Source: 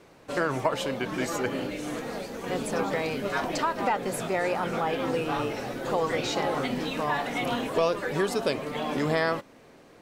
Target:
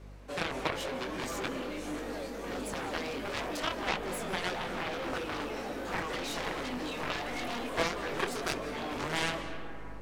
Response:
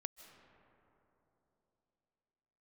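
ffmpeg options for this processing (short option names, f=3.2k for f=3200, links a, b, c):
-filter_complex "[0:a]highpass=f=190:w=0.5412,highpass=f=190:w=1.3066,aeval=exprs='val(0)+0.00501*(sin(2*PI*50*n/s)+sin(2*PI*2*50*n/s)/2+sin(2*PI*3*50*n/s)/3+sin(2*PI*4*50*n/s)/4+sin(2*PI*5*50*n/s)/5)':c=same,flanger=delay=19.5:depth=4.9:speed=1.5,aeval=exprs='0.2*(cos(1*acos(clip(val(0)/0.2,-1,1)))-cos(1*PI/2))+0.0708*(cos(7*acos(clip(val(0)/0.2,-1,1)))-cos(7*PI/2))':c=same[a];[1:a]atrim=start_sample=2205,asetrate=40572,aresample=44100[b];[a][b]afir=irnorm=-1:irlink=0"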